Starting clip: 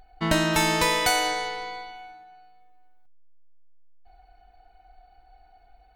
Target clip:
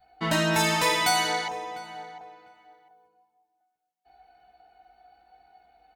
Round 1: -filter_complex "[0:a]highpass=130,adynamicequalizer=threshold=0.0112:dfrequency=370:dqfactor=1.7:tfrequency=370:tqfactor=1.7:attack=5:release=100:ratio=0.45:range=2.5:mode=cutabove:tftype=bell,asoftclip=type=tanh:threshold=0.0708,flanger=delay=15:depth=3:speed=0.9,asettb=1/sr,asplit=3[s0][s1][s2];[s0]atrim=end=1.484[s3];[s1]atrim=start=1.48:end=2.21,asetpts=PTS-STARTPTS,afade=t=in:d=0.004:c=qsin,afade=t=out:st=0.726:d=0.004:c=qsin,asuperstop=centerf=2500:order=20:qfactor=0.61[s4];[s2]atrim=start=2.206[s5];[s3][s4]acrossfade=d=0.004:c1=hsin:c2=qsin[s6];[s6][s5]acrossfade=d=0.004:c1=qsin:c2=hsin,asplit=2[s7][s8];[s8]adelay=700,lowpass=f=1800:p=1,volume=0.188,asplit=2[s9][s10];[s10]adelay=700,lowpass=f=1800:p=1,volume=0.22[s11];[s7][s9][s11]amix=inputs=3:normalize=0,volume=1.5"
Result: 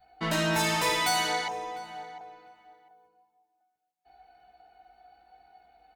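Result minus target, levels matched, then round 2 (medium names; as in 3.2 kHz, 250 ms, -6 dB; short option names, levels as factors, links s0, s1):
saturation: distortion +9 dB
-filter_complex "[0:a]highpass=130,adynamicequalizer=threshold=0.0112:dfrequency=370:dqfactor=1.7:tfrequency=370:tqfactor=1.7:attack=5:release=100:ratio=0.45:range=2.5:mode=cutabove:tftype=bell,asoftclip=type=tanh:threshold=0.178,flanger=delay=15:depth=3:speed=0.9,asettb=1/sr,asplit=3[s0][s1][s2];[s0]atrim=end=1.484[s3];[s1]atrim=start=1.48:end=2.21,asetpts=PTS-STARTPTS,afade=t=in:d=0.004:c=qsin,afade=t=out:st=0.726:d=0.004:c=qsin,asuperstop=centerf=2500:order=20:qfactor=0.61[s4];[s2]atrim=start=2.206[s5];[s3][s4]acrossfade=d=0.004:c1=hsin:c2=qsin[s6];[s6][s5]acrossfade=d=0.004:c1=qsin:c2=hsin,asplit=2[s7][s8];[s8]adelay=700,lowpass=f=1800:p=1,volume=0.188,asplit=2[s9][s10];[s10]adelay=700,lowpass=f=1800:p=1,volume=0.22[s11];[s7][s9][s11]amix=inputs=3:normalize=0,volume=1.5"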